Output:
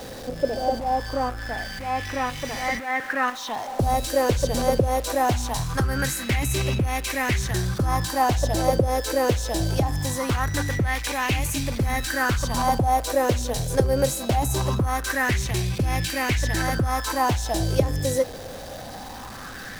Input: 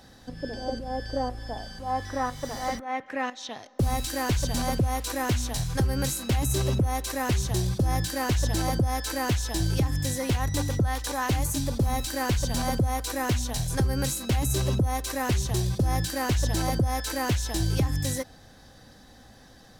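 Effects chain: jump at every zero crossing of -36 dBFS; sweeping bell 0.22 Hz 490–2500 Hz +13 dB

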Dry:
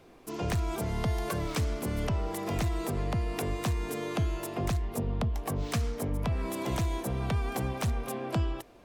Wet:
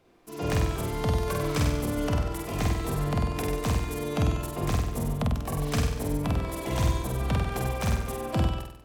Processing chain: on a send: flutter echo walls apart 8.2 m, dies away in 1 s; on the sum: upward expansion 1.5:1, over -44 dBFS; trim +3 dB

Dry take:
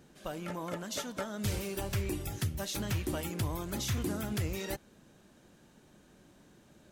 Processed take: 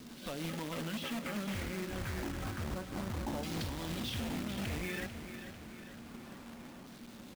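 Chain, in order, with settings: peaking EQ 250 Hz +14.5 dB 0.24 oct; in parallel at -2 dB: compression, threshold -43 dBFS, peak gain reduction 16 dB; on the sum: peak limiter -29 dBFS, peak gain reduction 10 dB; rotary cabinet horn 6.7 Hz, later 0.8 Hz, at 0.85 s; wavefolder -34 dBFS; LFO low-pass saw down 0.31 Hz 940–5000 Hz; tape speed -6%; companded quantiser 4-bit; on a send: feedback delay 444 ms, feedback 55%, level -10.5 dB

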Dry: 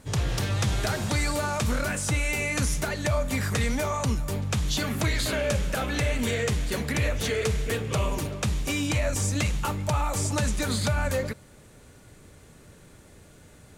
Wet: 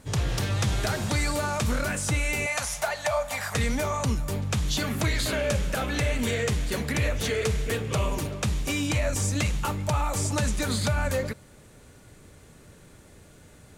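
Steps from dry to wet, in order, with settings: 2.46–3.55 s: resonant low shelf 480 Hz -13 dB, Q 3

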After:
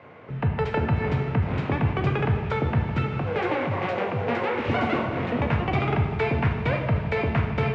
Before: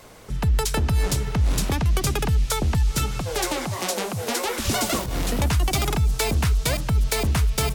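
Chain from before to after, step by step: elliptic band-pass 100–2400 Hz, stop band 80 dB; on a send: echo whose repeats swap between lows and highs 154 ms, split 1.1 kHz, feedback 50%, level -10.5 dB; on the sum: plate-style reverb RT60 1.3 s, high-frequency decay 0.8×, DRR 2.5 dB

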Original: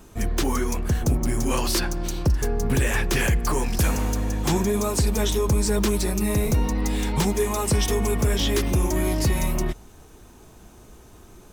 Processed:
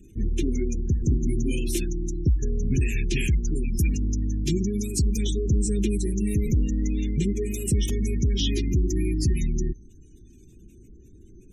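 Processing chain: spectral gate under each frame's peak -25 dB strong; elliptic band-stop 360–2400 Hz, stop band 80 dB; LFO notch square 0.19 Hz 570–4700 Hz

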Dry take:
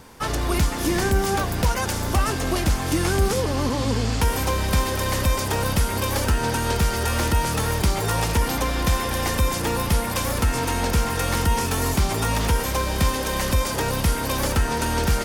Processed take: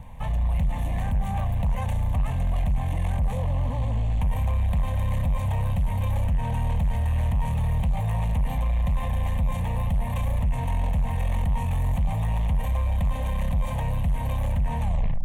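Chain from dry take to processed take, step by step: tape stop on the ending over 0.44 s; level rider gain up to 3 dB; tilt EQ -3 dB/octave; saturation -11.5 dBFS, distortion -7 dB; peak limiter -19 dBFS, peak gain reduction 7.5 dB; static phaser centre 1.4 kHz, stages 6; crackle 16 per s -44 dBFS; FFT filter 180 Hz 0 dB, 310 Hz -8 dB, 550 Hz -1 dB; reverberation, pre-delay 42 ms, DRR 20 dB

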